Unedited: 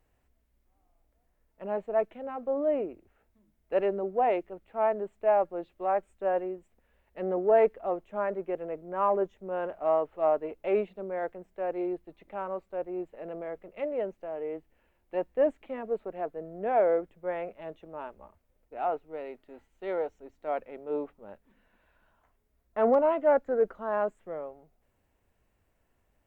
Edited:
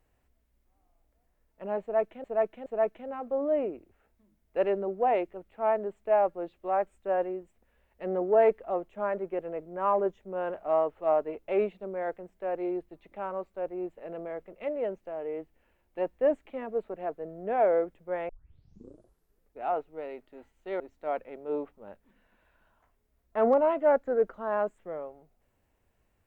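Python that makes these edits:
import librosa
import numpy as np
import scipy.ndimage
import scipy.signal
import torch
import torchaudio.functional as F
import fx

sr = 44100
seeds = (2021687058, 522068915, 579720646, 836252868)

y = fx.edit(x, sr, fx.repeat(start_s=1.82, length_s=0.42, count=3),
    fx.tape_start(start_s=17.45, length_s=1.32),
    fx.cut(start_s=19.96, length_s=0.25), tone=tone)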